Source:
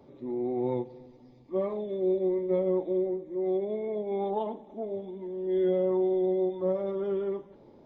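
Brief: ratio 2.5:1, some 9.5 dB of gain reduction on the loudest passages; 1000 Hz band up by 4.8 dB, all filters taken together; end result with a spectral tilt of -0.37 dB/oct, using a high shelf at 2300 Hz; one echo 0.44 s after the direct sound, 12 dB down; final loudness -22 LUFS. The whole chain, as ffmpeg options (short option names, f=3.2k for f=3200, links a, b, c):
-af "equalizer=f=1k:t=o:g=7,highshelf=f=2.3k:g=-4.5,acompressor=threshold=-37dB:ratio=2.5,aecho=1:1:440:0.251,volume=15dB"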